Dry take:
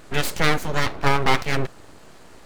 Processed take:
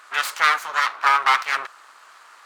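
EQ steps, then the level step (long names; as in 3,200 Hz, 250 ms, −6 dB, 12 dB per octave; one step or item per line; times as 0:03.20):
high-pass with resonance 1,200 Hz, resonance Q 2.9
high-shelf EQ 11,000 Hz −4.5 dB
0.0 dB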